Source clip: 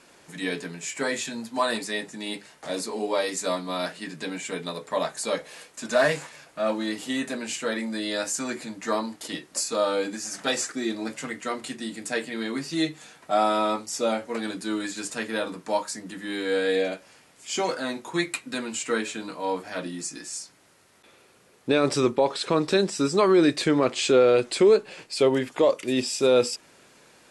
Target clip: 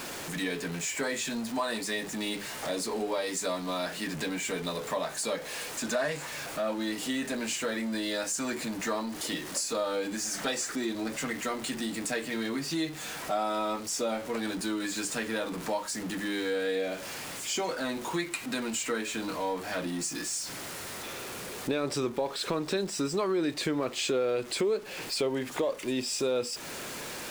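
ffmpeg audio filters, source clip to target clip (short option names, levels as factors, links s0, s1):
-af "aeval=exprs='val(0)+0.5*0.0188*sgn(val(0))':c=same,acompressor=threshold=0.0282:ratio=2.5"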